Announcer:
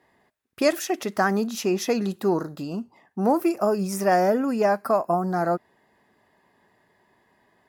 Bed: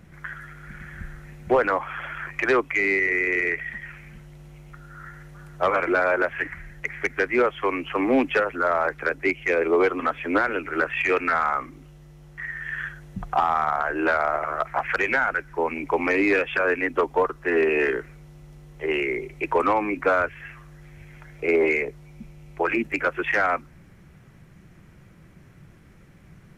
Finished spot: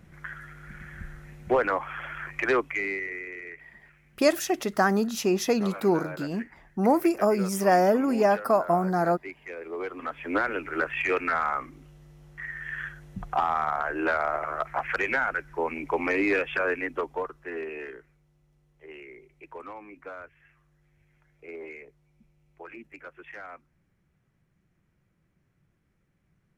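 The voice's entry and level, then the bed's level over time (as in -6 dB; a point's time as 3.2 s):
3.60 s, -0.5 dB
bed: 2.6 s -3.5 dB
3.38 s -17 dB
9.64 s -17 dB
10.4 s -4 dB
16.62 s -4 dB
18.22 s -20.5 dB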